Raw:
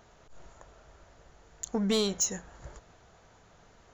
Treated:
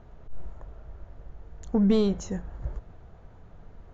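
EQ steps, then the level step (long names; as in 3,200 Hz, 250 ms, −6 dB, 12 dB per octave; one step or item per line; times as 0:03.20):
Bessel low-pass filter 4,700 Hz, order 2
spectral tilt −3.5 dB per octave
0.0 dB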